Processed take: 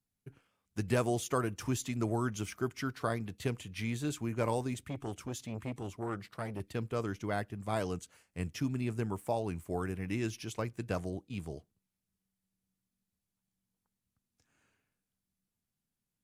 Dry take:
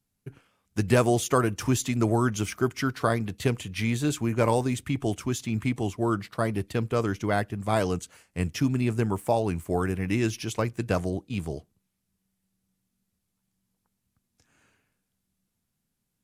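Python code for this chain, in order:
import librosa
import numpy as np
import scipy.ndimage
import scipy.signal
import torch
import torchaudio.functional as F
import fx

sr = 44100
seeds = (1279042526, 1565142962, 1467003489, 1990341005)

y = fx.transformer_sat(x, sr, knee_hz=740.0, at=(4.74, 6.6))
y = y * 10.0 ** (-9.0 / 20.0)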